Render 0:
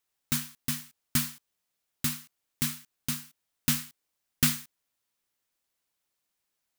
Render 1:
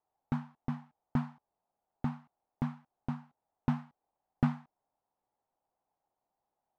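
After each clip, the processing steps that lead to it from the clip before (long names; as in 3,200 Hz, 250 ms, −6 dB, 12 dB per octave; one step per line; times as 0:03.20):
low-pass with resonance 800 Hz, resonance Q 4.9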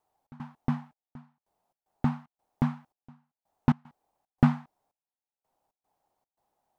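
gate pattern "xx.xxxx....xx.x" 113 BPM −24 dB
level +7.5 dB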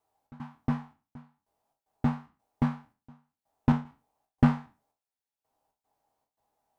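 peak hold with a decay on every bin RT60 0.32 s
notch comb filter 180 Hz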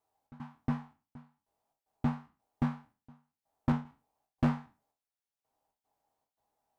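hard clipping −17.5 dBFS, distortion −11 dB
level −3.5 dB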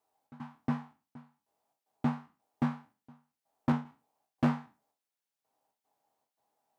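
high-pass filter 150 Hz 12 dB per octave
level +2 dB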